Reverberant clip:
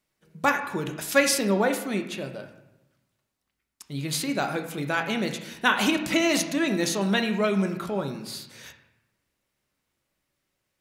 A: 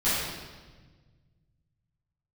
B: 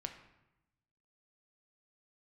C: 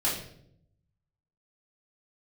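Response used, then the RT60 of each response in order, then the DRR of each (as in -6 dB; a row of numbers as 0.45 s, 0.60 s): B; 1.4 s, 0.90 s, 0.70 s; -14.0 dB, 5.0 dB, -9.0 dB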